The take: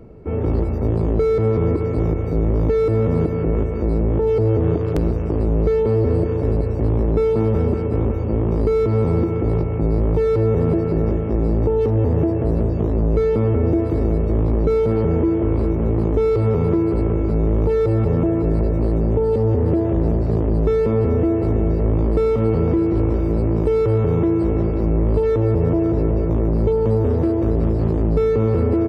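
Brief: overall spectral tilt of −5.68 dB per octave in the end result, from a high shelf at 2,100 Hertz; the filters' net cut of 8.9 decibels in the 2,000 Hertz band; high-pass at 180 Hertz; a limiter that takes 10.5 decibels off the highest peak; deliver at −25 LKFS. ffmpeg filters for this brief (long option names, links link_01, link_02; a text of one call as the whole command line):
ffmpeg -i in.wav -af "highpass=180,equalizer=frequency=2000:width_type=o:gain=-8.5,highshelf=frequency=2100:gain=-4,volume=1dB,alimiter=limit=-17.5dB:level=0:latency=1" out.wav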